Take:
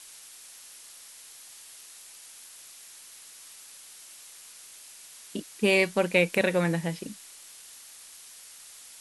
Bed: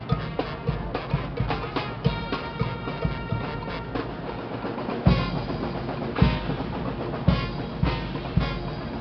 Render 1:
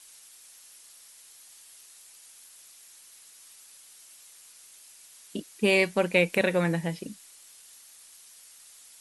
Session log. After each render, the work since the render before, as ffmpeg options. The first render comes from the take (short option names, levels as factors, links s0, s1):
-af "afftdn=nr=6:nf=-49"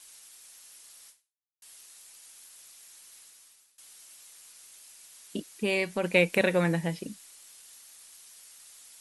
-filter_complex "[0:a]asplit=3[s0][s1][s2];[s0]afade=t=out:st=5.5:d=0.02[s3];[s1]acompressor=threshold=0.0224:ratio=1.5:attack=3.2:release=140:knee=1:detection=peak,afade=t=in:st=5.5:d=0.02,afade=t=out:st=6.03:d=0.02[s4];[s2]afade=t=in:st=6.03:d=0.02[s5];[s3][s4][s5]amix=inputs=3:normalize=0,asplit=3[s6][s7][s8];[s6]atrim=end=1.62,asetpts=PTS-STARTPTS,afade=t=out:st=1.09:d=0.53:c=exp[s9];[s7]atrim=start=1.62:end=3.78,asetpts=PTS-STARTPTS,afade=t=in:d=0.004:c=hsin,afade=t=out:st=1.57:d=0.59:silence=0.0749894[s10];[s8]atrim=start=3.78,asetpts=PTS-STARTPTS,afade=t=in:d=0.004:c=hsin:silence=0.0749894[s11];[s9][s10][s11]concat=n=3:v=0:a=1"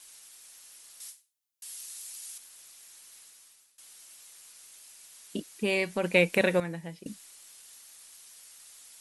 -filter_complex "[0:a]asettb=1/sr,asplit=3[s0][s1][s2];[s0]atrim=end=1.004[s3];[s1]atrim=start=1:end=2.38,asetpts=PTS-STARTPTS,afade=t=in:d=0.004:c=qsin,afade=t=out:st=1.376:d=0.004:c=qsin,highshelf=f=2900:g=10[s4];[s2]atrim=start=2.376[s5];[s3][s4]acrossfade=d=0.004:c1=hsin:c2=qsin[s6];[s6][s5]acrossfade=d=0.004:c1=qsin:c2=hsin,asplit=3[s7][s8][s9];[s7]atrim=end=6.602[s10];[s8]atrim=start=6.598:end=7.062,asetpts=PTS-STARTPTS,volume=0.316[s11];[s9]atrim=start=7.058[s12];[s10][s11]acrossfade=d=0.004:c1=hsin:c2=hsin[s13];[s13][s12]acrossfade=d=0.004:c1=hsin:c2=hsin"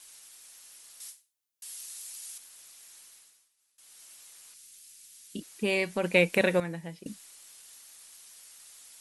-filter_complex "[0:a]asettb=1/sr,asplit=3[s0][s1][s2];[s0]atrim=end=4.544[s3];[s1]atrim=start=4.54:end=5.42,asetpts=PTS-STARTPTS,afade=t=in:d=0.004:c=qsin,afade=t=out:st=0.876:d=0.004:c=qsin,equalizer=f=830:w=0.62:g=-14.5[s4];[s2]atrim=start=5.416[s5];[s3][s4]acrossfade=d=0.004:c1=hsin:c2=qsin[s6];[s6][s5]acrossfade=d=0.004:c1=qsin:c2=hsin,asplit=3[s7][s8][s9];[s7]atrim=end=3.49,asetpts=PTS-STARTPTS,afade=t=out:st=3.01:d=0.48:silence=0.149624[s10];[s8]atrim=start=3.49:end=3.56,asetpts=PTS-STARTPTS,volume=0.15[s11];[s9]atrim=start=3.56,asetpts=PTS-STARTPTS,afade=t=in:d=0.48:silence=0.149624[s12];[s10][s11][s12]concat=n=3:v=0:a=1"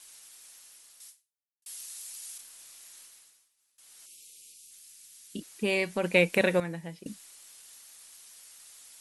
-filter_complex "[0:a]asettb=1/sr,asplit=3[s0][s1][s2];[s0]atrim=end=2.364[s3];[s1]atrim=start=2.36:end=3.07,asetpts=PTS-STARTPTS,afade=t=in:d=0.004:c=qsin,afade=t=out:st=0.706:d=0.004:c=qsin,asplit=2[s4][s5];[s5]adelay=30,volume=0.631[s6];[s4][s6]amix=inputs=2:normalize=0,atrim=end_sample=31311[s7];[s2]atrim=start=3.066[s8];[s3][s7]acrossfade=d=0.004:c1=hsin:c2=qsin[s9];[s9][s8]acrossfade=d=0.004:c1=qsin:c2=hsin,asettb=1/sr,asplit=3[s10][s11][s12];[s10]atrim=end=4.064[s13];[s11]atrim=start=4.06:end=4.71,asetpts=PTS-STARTPTS,afade=t=in:d=0.004:c=qsin,afade=t=out:st=0.646:d=0.004:c=qsin,asuperstop=centerf=1100:order=12:qfactor=0.61[s14];[s12]atrim=start=4.706[s15];[s13][s14]acrossfade=d=0.004:c1=hsin:c2=qsin[s16];[s16][s15]acrossfade=d=0.004:c1=qsin:c2=hsin,asplit=2[s17][s18];[s17]atrim=end=1.66,asetpts=PTS-STARTPTS,afade=t=out:st=0.5:d=1.16[s19];[s18]atrim=start=1.66,asetpts=PTS-STARTPTS,afade=t=in:d=0.004:c=hsin[s20];[s19][s20]concat=n=2:v=0:a=1"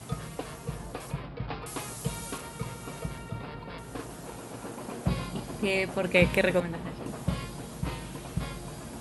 -filter_complex "[1:a]volume=0.335[s0];[0:a][s0]amix=inputs=2:normalize=0"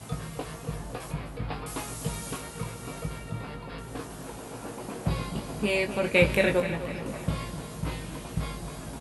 -filter_complex "[0:a]asplit=2[s0][s1];[s1]adelay=19,volume=0.531[s2];[s0][s2]amix=inputs=2:normalize=0,aecho=1:1:254|508|762|1016|1270:0.251|0.131|0.0679|0.0353|0.0184"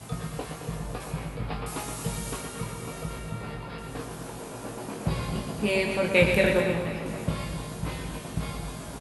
-filter_complex "[0:a]asplit=2[s0][s1];[s1]adelay=24,volume=0.282[s2];[s0][s2]amix=inputs=2:normalize=0,aecho=1:1:119.5|221.6:0.447|0.316"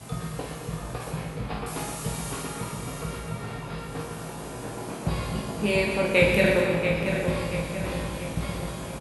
-filter_complex "[0:a]asplit=2[s0][s1];[s1]adelay=49,volume=0.531[s2];[s0][s2]amix=inputs=2:normalize=0,asplit=2[s3][s4];[s4]adelay=683,lowpass=f=4800:p=1,volume=0.447,asplit=2[s5][s6];[s6]adelay=683,lowpass=f=4800:p=1,volume=0.48,asplit=2[s7][s8];[s8]adelay=683,lowpass=f=4800:p=1,volume=0.48,asplit=2[s9][s10];[s10]adelay=683,lowpass=f=4800:p=1,volume=0.48,asplit=2[s11][s12];[s12]adelay=683,lowpass=f=4800:p=1,volume=0.48,asplit=2[s13][s14];[s14]adelay=683,lowpass=f=4800:p=1,volume=0.48[s15];[s3][s5][s7][s9][s11][s13][s15]amix=inputs=7:normalize=0"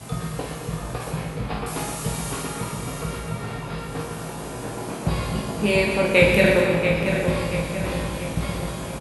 -af "volume=1.58"